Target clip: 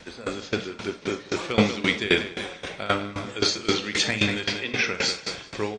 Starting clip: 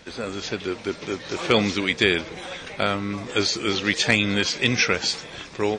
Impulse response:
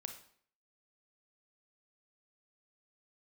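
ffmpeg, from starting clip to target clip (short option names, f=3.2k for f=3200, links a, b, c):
-filter_complex "[0:a]asettb=1/sr,asplit=3[a][b][c];[a]atrim=end=4.444[d];[b]atrim=start=4.44:end=4.84,asetpts=PTS-STARTPTS,afade=t=in:d=0.004:c=qsin,afade=t=out:st=0.396:d=0.004:c=qsin,highpass=250,lowpass=3.3k[e];[c]atrim=start=4.836[f];[d][e]acrossfade=d=0.004:c1=hsin:c2=qsin[g];[g][f]acrossfade=d=0.004:c1=qsin:c2=hsin,aecho=1:1:190|380|570|760|950:0.316|0.139|0.0612|0.0269|0.0119[h];[1:a]atrim=start_sample=2205,atrim=end_sample=4410[i];[h][i]afir=irnorm=-1:irlink=0,aeval=exprs='val(0)*pow(10,-18*if(lt(mod(3.8*n/s,1),2*abs(3.8)/1000),1-mod(3.8*n/s,1)/(2*abs(3.8)/1000),(mod(3.8*n/s,1)-2*abs(3.8)/1000)/(1-2*abs(3.8)/1000))/20)':c=same,volume=7.5dB"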